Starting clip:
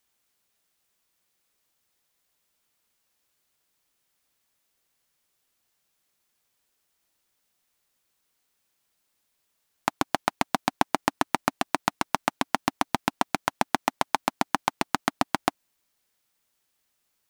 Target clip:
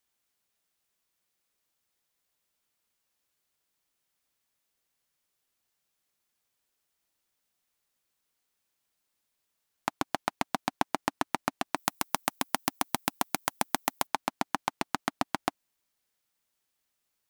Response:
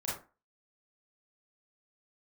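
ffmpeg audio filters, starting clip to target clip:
-filter_complex "[0:a]asettb=1/sr,asplit=3[link_01][link_02][link_03];[link_01]atrim=end=11.764[link_04];[link_02]atrim=start=11.76:end=14.07,asetpts=PTS-STARTPTS,afade=type=in:duration=0.004:curve=qsin,afade=type=out:start_time=2.306:duration=0.004:curve=qsin,aemphasis=mode=production:type=50fm[link_05];[link_03]atrim=start=14.066[link_06];[link_04][link_05]acrossfade=duration=0.004:curve1=hsin:curve2=qsin[link_07];[link_07][link_06]acrossfade=duration=0.004:curve1=qsin:curve2=hsin,volume=-5.5dB"

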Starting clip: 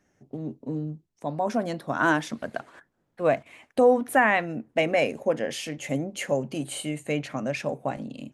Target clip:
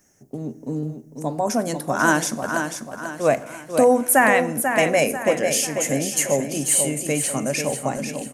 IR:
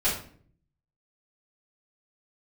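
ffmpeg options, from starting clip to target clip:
-filter_complex "[0:a]aexciter=amount=3.1:drive=9.1:freq=5300,aecho=1:1:491|982|1473|1964|2455:0.447|0.188|0.0788|0.0331|0.0139,asplit=2[link_01][link_02];[1:a]atrim=start_sample=2205,asetrate=26460,aresample=44100[link_03];[link_02][link_03]afir=irnorm=-1:irlink=0,volume=-29.5dB[link_04];[link_01][link_04]amix=inputs=2:normalize=0,volume=3.5dB"

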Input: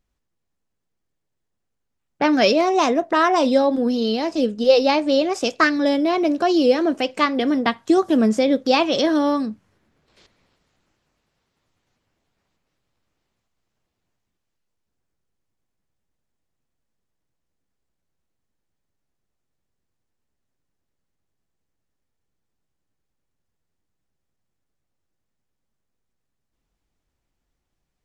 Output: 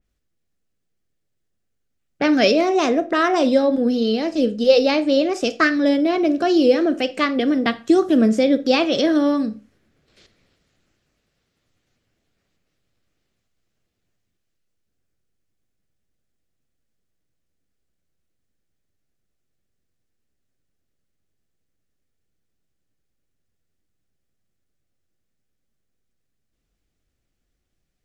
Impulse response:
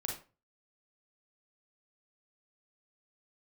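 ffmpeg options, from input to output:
-filter_complex "[0:a]equalizer=frequency=940:width_type=o:width=0.56:gain=-10.5,asplit=2[link_01][link_02];[1:a]atrim=start_sample=2205[link_03];[link_02][link_03]afir=irnorm=-1:irlink=0,volume=-11dB[link_04];[link_01][link_04]amix=inputs=2:normalize=0,adynamicequalizer=threshold=0.0178:dfrequency=3100:dqfactor=0.7:tfrequency=3100:tqfactor=0.7:attack=5:release=100:ratio=0.375:range=2.5:mode=cutabove:tftype=highshelf"

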